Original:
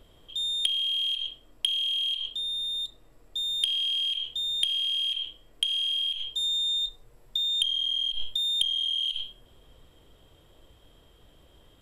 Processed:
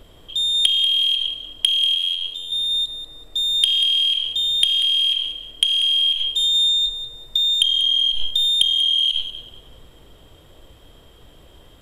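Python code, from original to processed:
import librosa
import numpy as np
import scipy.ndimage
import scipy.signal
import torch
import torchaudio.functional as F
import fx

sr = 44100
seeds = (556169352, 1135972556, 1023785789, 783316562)

p1 = fx.robotise(x, sr, hz=87.8, at=(1.95, 2.52))
p2 = p1 + fx.echo_feedback(p1, sr, ms=189, feedback_pct=31, wet_db=-12.0, dry=0)
p3 = fx.end_taper(p2, sr, db_per_s=450.0)
y = p3 * librosa.db_to_amplitude(9.0)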